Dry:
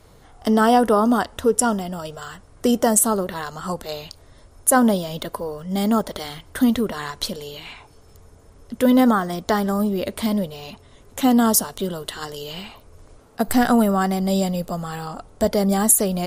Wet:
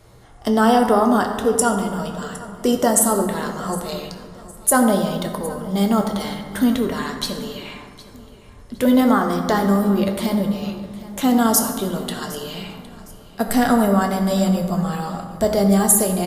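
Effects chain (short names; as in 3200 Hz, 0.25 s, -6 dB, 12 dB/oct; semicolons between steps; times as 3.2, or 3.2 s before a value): feedback echo 0.761 s, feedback 33%, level -19 dB; on a send at -3 dB: reverb RT60 1.8 s, pre-delay 4 ms; on the sum: downsampling 32000 Hz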